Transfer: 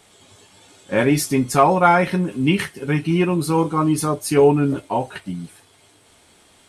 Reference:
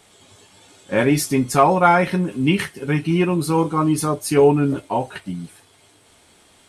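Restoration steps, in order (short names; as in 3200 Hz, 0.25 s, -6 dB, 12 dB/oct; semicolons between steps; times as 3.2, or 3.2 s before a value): none needed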